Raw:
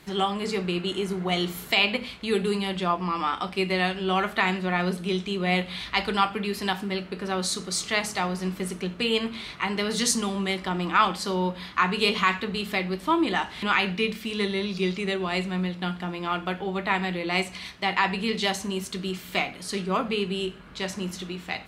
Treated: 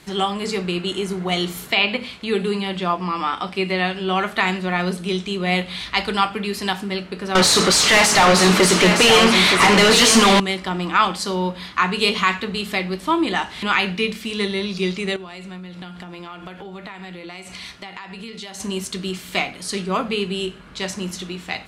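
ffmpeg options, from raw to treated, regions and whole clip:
ffmpeg -i in.wav -filter_complex "[0:a]asettb=1/sr,asplit=3[link_01][link_02][link_03];[link_01]atrim=end=1.664[link_04];[link_02]atrim=start=1.66:end=4.35,asetpts=PTS-STARTPTS,afade=type=in:duration=0.004:curve=qsin,afade=type=out:start_time=2.686:duration=0.004:curve=qsin,acrossover=split=4300[link_05][link_06];[link_06]acompressor=threshold=-49dB:ratio=4:attack=1:release=60[link_07];[link_05][link_07]amix=inputs=2:normalize=0,highpass=70[link_08];[link_03]atrim=start=4.346[link_09];[link_04][link_08]acrossfade=duration=0.004:curve1=hsin:curve2=qsin[link_10];[link_10][link_09]acrossfade=duration=0.004:curve1=qsin:curve2=hsin,asettb=1/sr,asplit=3[link_11][link_12][link_13];[link_11]atrim=end=7.354[link_14];[link_12]atrim=start=7.35:end=10.4,asetpts=PTS-STARTPTS,afade=type=in:duration=0.004:curve=qsin,afade=type=out:start_time=3.046:duration=0.004:curve=qsin,asplit=2[link_15][link_16];[link_16]highpass=frequency=720:poles=1,volume=34dB,asoftclip=type=tanh:threshold=-9dB[link_17];[link_15][link_17]amix=inputs=2:normalize=0,lowpass=frequency=2800:poles=1,volume=-6dB,aecho=1:1:918:0.473,atrim=end_sample=134505[link_18];[link_13]atrim=start=10.396[link_19];[link_14][link_18]acrossfade=duration=0.004:curve1=hsin:curve2=qsin[link_20];[link_20][link_19]acrossfade=duration=0.004:curve1=qsin:curve2=hsin,asettb=1/sr,asplit=3[link_21][link_22][link_23];[link_21]atrim=end=15.164[link_24];[link_22]atrim=start=15.16:end=18.6,asetpts=PTS-STARTPTS,afade=type=in:duration=0.004:curve=qsin,afade=type=out:start_time=3.436:duration=0.004:curve=qsin,acompressor=threshold=-35dB:ratio=12:attack=3.2:release=140:knee=1:detection=peak,aeval=exprs='val(0)+0.000891*sin(2*PI*1400*n/s)':channel_layout=same[link_25];[link_23]atrim=start=18.596[link_26];[link_24][link_25]acrossfade=duration=0.004:curve1=hsin:curve2=qsin[link_27];[link_27][link_26]acrossfade=duration=0.004:curve1=qsin:curve2=hsin,lowpass=10000,highshelf=frequency=6700:gain=8.5,volume=3.5dB" out.wav

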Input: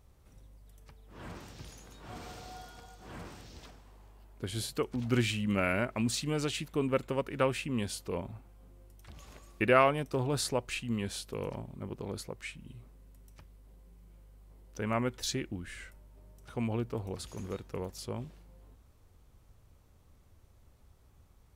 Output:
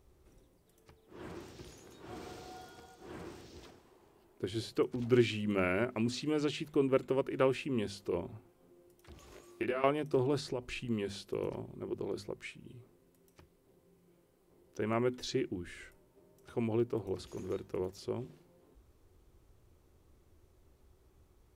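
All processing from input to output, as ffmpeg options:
ffmpeg -i in.wav -filter_complex "[0:a]asettb=1/sr,asplit=3[link_01][link_02][link_03];[link_01]atrim=end=9.304[link_04];[link_02]atrim=start=9.3:end=9.84,asetpts=PTS-STARTPTS,afade=type=in:duration=0.004:curve=qsin,afade=type=out:start_time=0.536:duration=0.004:curve=qsin,highpass=frequency=170:poles=1,acompressor=threshold=-32dB:ratio=8:attack=3.2:release=140:knee=1:detection=peak,asplit=2[link_05][link_06];[link_06]adelay=20,volume=-2.5dB[link_07];[link_05][link_07]amix=inputs=2:normalize=0,atrim=end_sample=23814[link_08];[link_03]atrim=start=9.836[link_09];[link_04][link_08]acrossfade=duration=0.004:curve1=hsin:curve2=qsin[link_10];[link_10][link_09]acrossfade=duration=0.004:curve1=qsin:curve2=hsin,asettb=1/sr,asplit=3[link_11][link_12][link_13];[link_11]atrim=end=10.394[link_14];[link_12]atrim=start=10.39:end=10.85,asetpts=PTS-STARTPTS,afade=type=in:duration=0.004:curve=qsin,afade=type=out:start_time=0.456:duration=0.004:curve=qsin,asubboost=boost=10:cutoff=220,acompressor=threshold=-31dB:ratio=10:attack=3.2:release=140:knee=1:detection=peak[link_15];[link_13]atrim=start=10.846[link_16];[link_14][link_15]acrossfade=duration=0.004:curve1=hsin:curve2=qsin[link_17];[link_17][link_16]acrossfade=duration=0.004:curve1=qsin:curve2=hsin,acrossover=split=5900[link_18][link_19];[link_19]acompressor=threshold=-55dB:ratio=4:attack=1:release=60[link_20];[link_18][link_20]amix=inputs=2:normalize=0,equalizer=frequency=360:width_type=o:width=0.54:gain=11,bandreject=frequency=50:width_type=h:width=6,bandreject=frequency=100:width_type=h:width=6,bandreject=frequency=150:width_type=h:width=6,bandreject=frequency=200:width_type=h:width=6,bandreject=frequency=250:width_type=h:width=6,volume=-3.5dB" out.wav

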